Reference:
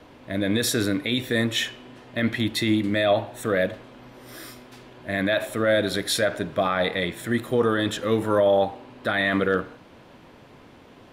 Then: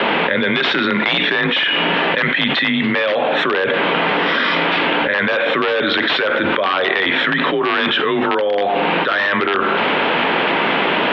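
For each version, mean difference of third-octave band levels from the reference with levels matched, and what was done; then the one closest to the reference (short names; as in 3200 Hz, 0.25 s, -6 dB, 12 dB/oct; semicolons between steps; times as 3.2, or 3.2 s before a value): 12.5 dB: tilt shelf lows -6 dB, about 780 Hz; wrapped overs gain 12.5 dB; mistuned SSB -79 Hz 310–3400 Hz; fast leveller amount 100%; gain +2 dB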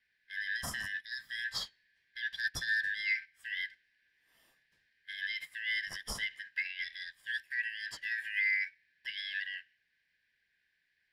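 17.0 dB: four-band scrambler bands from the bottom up 4123; low shelf 400 Hz +9.5 dB; limiter -17.5 dBFS, peak gain reduction 9 dB; upward expander 2.5:1, over -39 dBFS; gain -5 dB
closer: first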